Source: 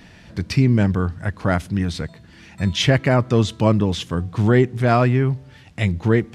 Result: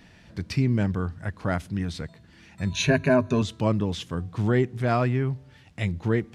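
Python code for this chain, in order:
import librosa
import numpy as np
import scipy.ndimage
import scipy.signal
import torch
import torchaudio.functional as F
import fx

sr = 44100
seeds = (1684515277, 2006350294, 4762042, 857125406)

y = fx.ripple_eq(x, sr, per_octave=1.5, db=15, at=(2.71, 3.42))
y = y * librosa.db_to_amplitude(-7.0)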